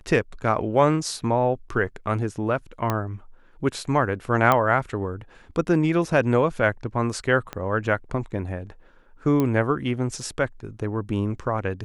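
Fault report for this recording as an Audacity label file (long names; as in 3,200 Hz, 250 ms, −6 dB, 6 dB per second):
2.900000	2.900000	click −10 dBFS
4.520000	4.520000	click −7 dBFS
7.530000	7.530000	click −16 dBFS
9.400000	9.400000	click −11 dBFS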